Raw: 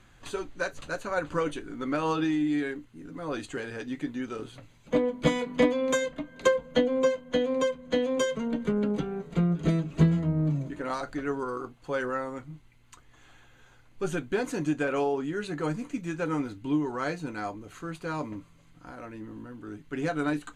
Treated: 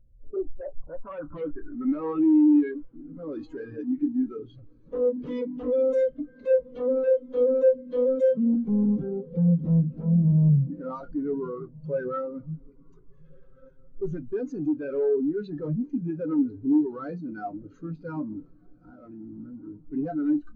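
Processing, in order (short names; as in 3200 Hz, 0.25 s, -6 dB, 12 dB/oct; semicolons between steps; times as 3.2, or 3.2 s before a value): low shelf 110 Hz +4.5 dB; power-law curve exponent 0.5; low-pass sweep 540 Hz -> 5500 Hz, 0.24–3.1; wavefolder -16.5 dBFS; on a send: diffused feedback echo 1.508 s, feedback 45%, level -10.5 dB; on the sum: spectral expander 2.5:1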